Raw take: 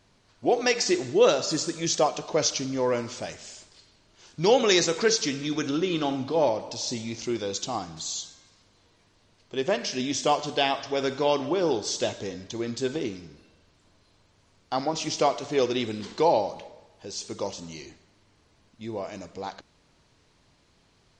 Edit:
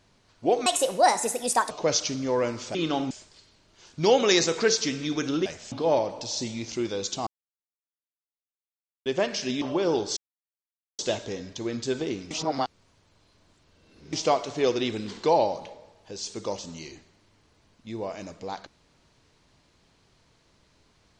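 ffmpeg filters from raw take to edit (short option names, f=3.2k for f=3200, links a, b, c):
-filter_complex "[0:a]asplit=13[a][b][c][d][e][f][g][h][i][j][k][l][m];[a]atrim=end=0.664[n];[b]atrim=start=0.66:end=2.21,asetpts=PTS-STARTPTS,asetrate=65268,aresample=44100[o];[c]atrim=start=2.206:end=3.252[p];[d]atrim=start=5.858:end=6.222[q];[e]atrim=start=3.508:end=5.862[r];[f]atrim=start=3.248:end=3.512[s];[g]atrim=start=6.218:end=7.77,asetpts=PTS-STARTPTS,afade=t=out:st=1.548:d=0.004:c=hsin[t];[h]atrim=start=7.77:end=9.56,asetpts=PTS-STARTPTS,volume=0[u];[i]atrim=start=9.56:end=10.122,asetpts=PTS-STARTPTS,afade=t=in:d=0.004:c=hsin[v];[j]atrim=start=11.378:end=11.93,asetpts=PTS-STARTPTS,afade=t=out:st=0.548:d=0.004:c=hsin,apad=pad_dur=0.82[w];[k]atrim=start=11.93:end=13.252,asetpts=PTS-STARTPTS,afade=t=in:d=0.004:c=hsin[x];[l]atrim=start=13.248:end=15.072,asetpts=PTS-STARTPTS,areverse[y];[m]atrim=start=15.068[z];[n][o]acrossfade=d=0.004:c1=hsin:c2=hsin[aa];[aa][p]acrossfade=d=0.004:c1=hsin:c2=hsin[ab];[ab][q]acrossfade=d=0.004:c1=hsin:c2=hsin[ac];[ac][r]acrossfade=d=0.004:c1=hsin:c2=hsin[ad];[ad][s]acrossfade=d=0.004:c1=hsin:c2=hsin[ae];[t][u][v]concat=n=3:v=0:a=1[af];[ae][af]acrossfade=d=0.004:c1=hsin:c2=hsin[ag];[w][x]concat=n=2:v=0:a=1[ah];[ag][ah]acrossfade=d=0.004:c1=hsin:c2=hsin[ai];[ai][y]acrossfade=d=0.004:c1=hsin:c2=hsin[aj];[aj][z]acrossfade=d=0.004:c1=hsin:c2=hsin"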